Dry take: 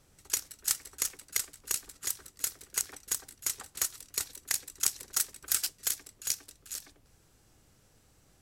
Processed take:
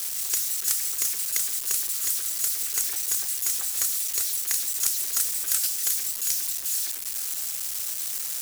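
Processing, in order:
spike at every zero crossing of −22.5 dBFS

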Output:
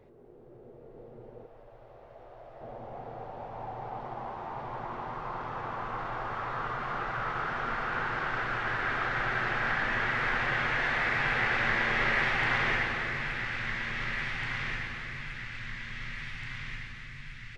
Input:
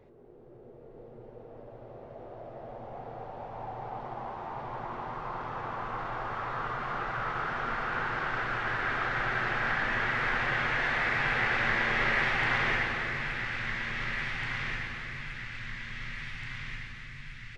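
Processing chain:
0:01.46–0:02.61: parametric band 220 Hz −12.5 dB 2.4 octaves

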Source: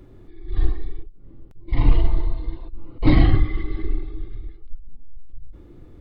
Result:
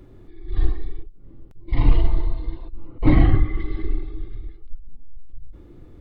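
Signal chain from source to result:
0:02.87–0:03.60: low-pass filter 2,400 Hz 12 dB per octave

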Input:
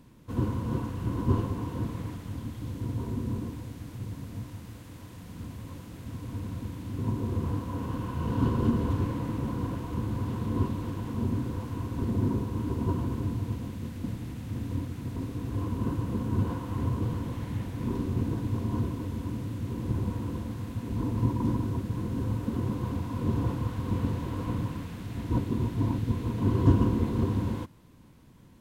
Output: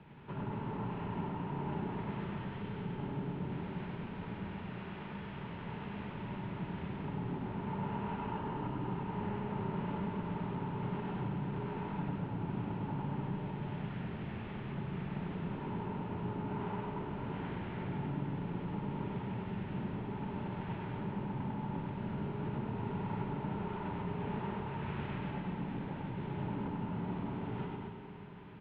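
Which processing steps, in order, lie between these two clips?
low-shelf EQ 210 Hz −6 dB
downward compressor 10 to 1, threshold −37 dBFS, peak gain reduction 19.5 dB
soft clipping −37.5 dBFS, distortion −15 dB
log-companded quantiser 6 bits
flanger 0.59 Hz, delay 6.7 ms, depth 3.2 ms, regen −75%
on a send: loudspeakers that aren't time-aligned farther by 34 metres −2 dB, 78 metres −5 dB
on the sum: four-comb reverb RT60 3.7 s, combs from 33 ms, DRR 6 dB
single-sideband voice off tune −100 Hz 210–3,100 Hz
level +9 dB

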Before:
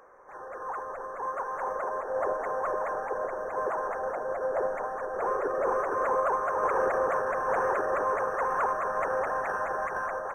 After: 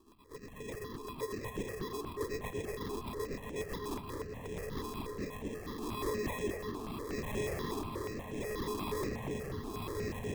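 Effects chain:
elliptic band-stop filter 310–980 Hz
in parallel at −1 dB: compressor whose output falls as the input rises −33 dBFS
on the sum: hard clipping −28 dBFS, distortion −10 dB
rotating-speaker cabinet horn 8 Hz, later 0.75 Hz, at 0:03.52
decimation without filtering 30×
on a send: tape delay 233 ms, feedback 77%, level −3 dB, low-pass 1,600 Hz
on the sum: step-sequenced phaser 8.3 Hz 540–4,500 Hz
level −2.5 dB

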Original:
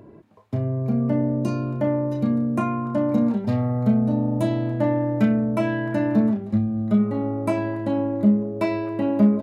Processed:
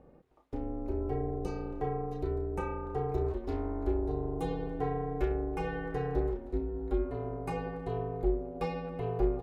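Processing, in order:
ring modulation 160 Hz
on a send: tape delay 323 ms, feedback 82%, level −23.5 dB, low-pass 2,500 Hz
on the sum: level −8.5 dB

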